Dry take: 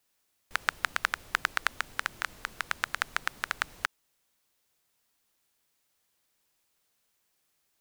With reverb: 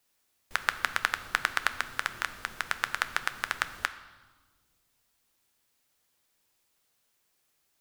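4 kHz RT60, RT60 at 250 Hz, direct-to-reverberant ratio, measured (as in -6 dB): 1.2 s, 2.3 s, 10.5 dB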